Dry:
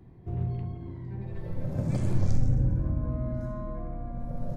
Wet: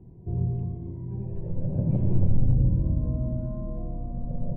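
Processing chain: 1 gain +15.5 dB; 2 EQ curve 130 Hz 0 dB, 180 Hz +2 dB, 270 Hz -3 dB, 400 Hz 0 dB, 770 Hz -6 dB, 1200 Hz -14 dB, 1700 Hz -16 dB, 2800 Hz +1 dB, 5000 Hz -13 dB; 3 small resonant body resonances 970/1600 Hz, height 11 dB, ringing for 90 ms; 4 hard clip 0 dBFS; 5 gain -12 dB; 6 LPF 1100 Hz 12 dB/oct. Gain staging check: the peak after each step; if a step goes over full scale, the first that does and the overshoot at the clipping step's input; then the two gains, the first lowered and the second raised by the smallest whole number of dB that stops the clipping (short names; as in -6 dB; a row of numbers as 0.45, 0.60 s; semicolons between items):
+4.0, +3.5, +3.5, 0.0, -12.0, -12.0 dBFS; step 1, 3.5 dB; step 1 +11.5 dB, step 5 -8 dB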